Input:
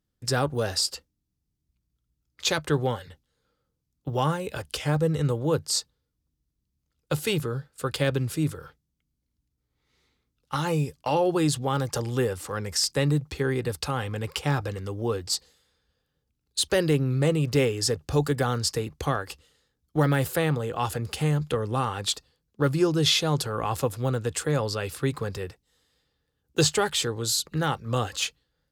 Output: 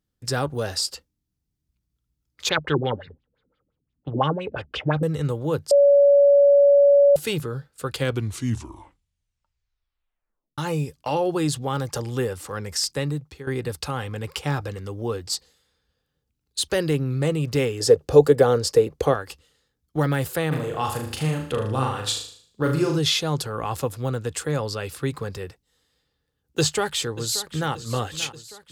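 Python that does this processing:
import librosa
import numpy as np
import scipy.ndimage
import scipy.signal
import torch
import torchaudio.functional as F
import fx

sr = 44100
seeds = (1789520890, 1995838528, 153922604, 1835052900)

y = fx.filter_lfo_lowpass(x, sr, shape='sine', hz=5.8, low_hz=230.0, high_hz=3500.0, q=3.9, at=(2.49, 5.03))
y = fx.peak_eq(y, sr, hz=480.0, db=14.5, octaves=1.0, at=(17.8, 19.14))
y = fx.room_flutter(y, sr, wall_m=6.5, rt60_s=0.55, at=(20.51, 22.97), fade=0.02)
y = fx.echo_throw(y, sr, start_s=26.59, length_s=1.15, ms=580, feedback_pct=60, wet_db=-14.5)
y = fx.edit(y, sr, fx.bleep(start_s=5.71, length_s=1.45, hz=567.0, db=-11.0),
    fx.tape_stop(start_s=7.91, length_s=2.67),
    fx.fade_out_to(start_s=12.84, length_s=0.63, floor_db=-13.5), tone=tone)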